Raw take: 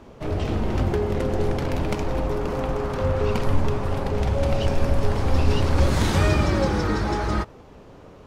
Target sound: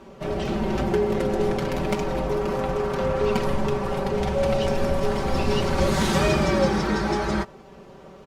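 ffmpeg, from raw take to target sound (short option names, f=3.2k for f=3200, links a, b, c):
-af "lowshelf=f=61:g=-10.5,aecho=1:1:5.2:0.72" -ar 48000 -c:a libopus -b:a 64k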